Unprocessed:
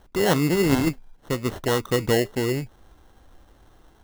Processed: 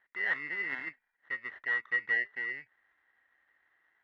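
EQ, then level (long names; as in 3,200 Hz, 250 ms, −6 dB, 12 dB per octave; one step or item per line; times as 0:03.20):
resonant band-pass 1,900 Hz, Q 15
high-frequency loss of the air 190 metres
+8.5 dB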